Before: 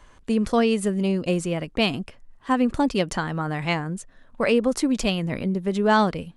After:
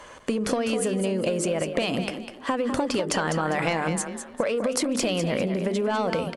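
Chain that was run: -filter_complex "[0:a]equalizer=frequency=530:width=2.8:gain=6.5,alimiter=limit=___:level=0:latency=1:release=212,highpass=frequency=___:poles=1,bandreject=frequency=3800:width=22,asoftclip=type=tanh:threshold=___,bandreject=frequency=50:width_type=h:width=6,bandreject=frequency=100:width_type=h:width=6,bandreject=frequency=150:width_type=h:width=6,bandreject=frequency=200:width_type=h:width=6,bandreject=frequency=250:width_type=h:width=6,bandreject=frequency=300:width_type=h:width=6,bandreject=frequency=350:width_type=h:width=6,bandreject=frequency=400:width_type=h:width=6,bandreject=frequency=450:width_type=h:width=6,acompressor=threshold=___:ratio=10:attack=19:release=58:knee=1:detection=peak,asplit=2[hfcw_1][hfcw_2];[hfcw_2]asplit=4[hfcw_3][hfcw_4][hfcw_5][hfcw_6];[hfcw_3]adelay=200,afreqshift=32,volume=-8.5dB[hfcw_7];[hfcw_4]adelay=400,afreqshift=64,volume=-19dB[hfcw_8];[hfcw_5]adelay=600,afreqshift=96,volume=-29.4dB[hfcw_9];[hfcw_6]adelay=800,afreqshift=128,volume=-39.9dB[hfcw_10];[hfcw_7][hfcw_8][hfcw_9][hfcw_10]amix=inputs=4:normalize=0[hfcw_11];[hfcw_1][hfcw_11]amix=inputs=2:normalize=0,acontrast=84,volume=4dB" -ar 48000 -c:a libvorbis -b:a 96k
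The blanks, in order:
-11dB, 280, -13.5dB, -37dB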